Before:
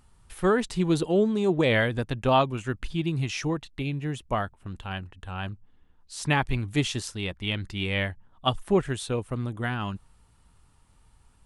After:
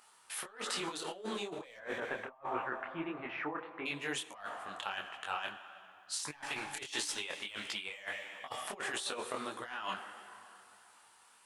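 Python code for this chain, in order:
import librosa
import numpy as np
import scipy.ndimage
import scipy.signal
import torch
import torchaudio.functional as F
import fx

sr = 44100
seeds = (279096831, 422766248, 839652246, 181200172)

y = scipy.signal.sosfilt(scipy.signal.butter(2, 790.0, 'highpass', fs=sr, output='sos'), x)
y = 10.0 ** (-21.5 / 20.0) * np.tanh(y / 10.0 ** (-21.5 / 20.0))
y = fx.lowpass(y, sr, hz=1700.0, slope=24, at=(1.76, 3.85), fade=0.02)
y = fx.rev_plate(y, sr, seeds[0], rt60_s=2.8, hf_ratio=0.75, predelay_ms=0, drr_db=14.0)
y = fx.over_compress(y, sr, threshold_db=-40.0, ratio=-0.5)
y = fx.detune_double(y, sr, cents=54)
y = y * librosa.db_to_amplitude(4.5)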